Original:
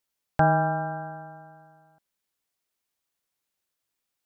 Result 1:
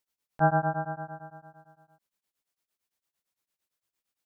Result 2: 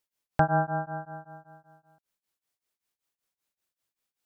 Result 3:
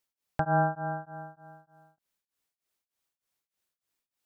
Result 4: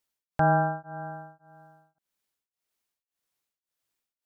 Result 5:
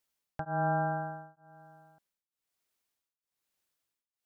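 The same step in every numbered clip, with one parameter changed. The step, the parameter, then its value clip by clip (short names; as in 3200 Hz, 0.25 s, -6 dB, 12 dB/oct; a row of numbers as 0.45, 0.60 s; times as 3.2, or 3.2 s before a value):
beating tremolo, nulls at: 8.8, 5.2, 3.3, 1.8, 1.1 Hz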